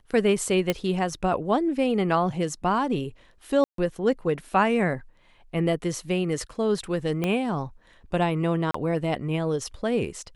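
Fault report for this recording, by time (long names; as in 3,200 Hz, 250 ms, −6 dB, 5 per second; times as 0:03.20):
0:00.70: click −9 dBFS
0:03.64–0:03.78: drop-out 143 ms
0:07.24: click −13 dBFS
0:08.71–0:08.74: drop-out 34 ms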